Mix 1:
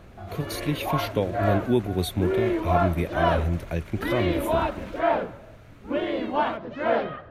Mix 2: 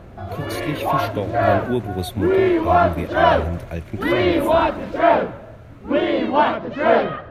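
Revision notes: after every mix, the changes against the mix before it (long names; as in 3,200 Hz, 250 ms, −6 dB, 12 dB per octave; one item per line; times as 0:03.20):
background +8.0 dB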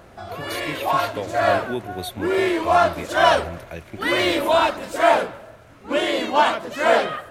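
background: remove high-frequency loss of the air 270 metres
master: add low-shelf EQ 340 Hz −11.5 dB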